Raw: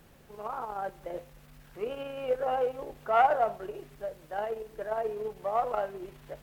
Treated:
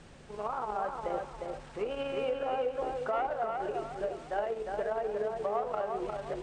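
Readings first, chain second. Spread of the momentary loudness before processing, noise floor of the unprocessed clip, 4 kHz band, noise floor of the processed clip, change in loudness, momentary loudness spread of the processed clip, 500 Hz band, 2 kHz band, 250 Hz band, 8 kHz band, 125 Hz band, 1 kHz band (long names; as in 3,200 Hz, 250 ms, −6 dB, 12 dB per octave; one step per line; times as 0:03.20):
17 LU, −56 dBFS, +1.5 dB, −50 dBFS, −2.5 dB, 5 LU, −1.0 dB, −2.5 dB, +3.0 dB, can't be measured, +1.5 dB, −4.0 dB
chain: elliptic low-pass filter 8,800 Hz, stop band 40 dB
downward compressor 6 to 1, threshold −36 dBFS, peak gain reduction 16 dB
feedback echo with a low-pass in the loop 355 ms, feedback 39%, low-pass 3,400 Hz, level −4 dB
level +5.5 dB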